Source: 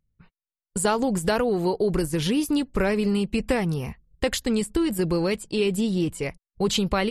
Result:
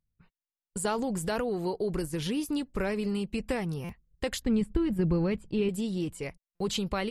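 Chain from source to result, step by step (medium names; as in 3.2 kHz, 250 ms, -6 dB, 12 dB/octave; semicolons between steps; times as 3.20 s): 0.86–1.43 s: transient shaper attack -2 dB, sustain +5 dB; 4.42–5.69 s: tone controls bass +10 dB, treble -15 dB; buffer glitch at 3.84/6.55 s, samples 256, times 8; trim -7.5 dB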